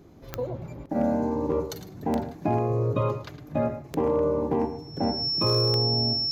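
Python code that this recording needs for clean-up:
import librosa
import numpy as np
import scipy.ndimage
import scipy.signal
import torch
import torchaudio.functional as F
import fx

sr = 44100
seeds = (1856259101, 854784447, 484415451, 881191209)

y = fx.fix_declip(x, sr, threshold_db=-15.5)
y = fx.fix_declick_ar(y, sr, threshold=10.0)
y = fx.notch(y, sr, hz=5400.0, q=30.0)
y = fx.fix_echo_inverse(y, sr, delay_ms=109, level_db=-12.5)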